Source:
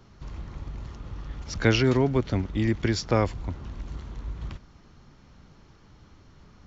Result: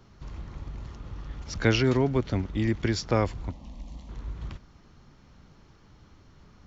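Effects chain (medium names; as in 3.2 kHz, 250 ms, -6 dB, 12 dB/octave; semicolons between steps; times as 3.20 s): 3.51–4.09 s: static phaser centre 390 Hz, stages 6; trim -1.5 dB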